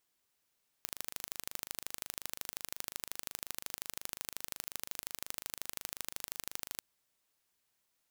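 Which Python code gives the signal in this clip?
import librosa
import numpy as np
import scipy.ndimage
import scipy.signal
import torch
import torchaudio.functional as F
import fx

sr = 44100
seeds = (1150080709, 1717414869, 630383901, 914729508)

y = fx.impulse_train(sr, length_s=5.96, per_s=25.6, accent_every=2, level_db=-10.0)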